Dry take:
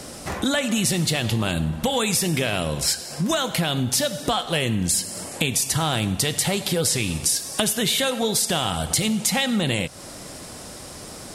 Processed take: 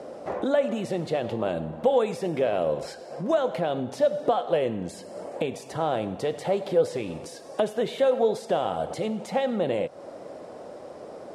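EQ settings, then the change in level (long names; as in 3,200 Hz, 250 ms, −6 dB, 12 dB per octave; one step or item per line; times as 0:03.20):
resonant band-pass 540 Hz, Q 2.1
+5.5 dB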